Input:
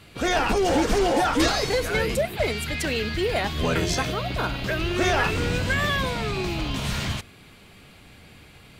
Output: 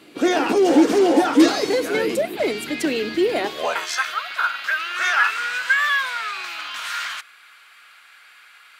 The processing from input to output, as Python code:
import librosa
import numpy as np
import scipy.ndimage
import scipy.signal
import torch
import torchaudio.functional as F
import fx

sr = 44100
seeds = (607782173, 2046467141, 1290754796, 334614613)

y = fx.filter_sweep_highpass(x, sr, from_hz=300.0, to_hz=1400.0, start_s=3.39, end_s=3.91, q=3.5)